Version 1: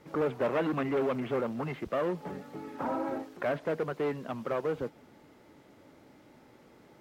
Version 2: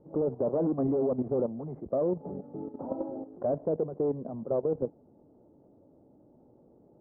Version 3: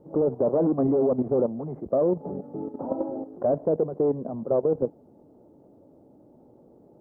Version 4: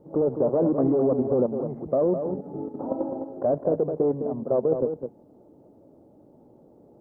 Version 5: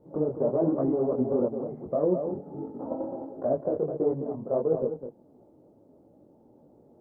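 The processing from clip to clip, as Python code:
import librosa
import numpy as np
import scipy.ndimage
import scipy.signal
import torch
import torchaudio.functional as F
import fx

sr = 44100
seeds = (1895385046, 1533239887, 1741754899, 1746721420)

y1 = scipy.signal.sosfilt(scipy.signal.cheby2(4, 80, 4100.0, 'lowpass', fs=sr, output='sos'), x)
y1 = fx.level_steps(y1, sr, step_db=11)
y1 = y1 * 10.0 ** (6.5 / 20.0)
y2 = fx.low_shelf(y1, sr, hz=130.0, db=-4.5)
y2 = y2 * 10.0 ** (6.0 / 20.0)
y3 = y2 + 10.0 ** (-7.5 / 20.0) * np.pad(y2, (int(208 * sr / 1000.0), 0))[:len(y2)]
y4 = fx.detune_double(y3, sr, cents=51)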